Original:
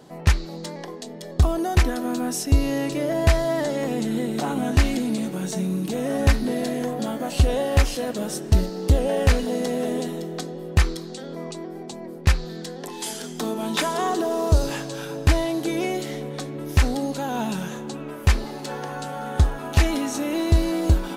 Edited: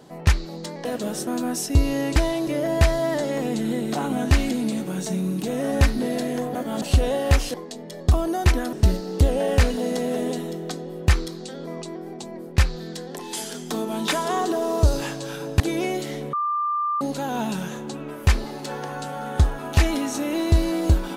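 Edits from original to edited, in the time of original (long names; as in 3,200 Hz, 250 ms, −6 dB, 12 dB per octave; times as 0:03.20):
0:00.85–0:02.04: swap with 0:08.00–0:08.42
0:07.01–0:07.28: reverse
0:15.29–0:15.60: move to 0:02.93
0:16.33–0:17.01: beep over 1,190 Hz −21 dBFS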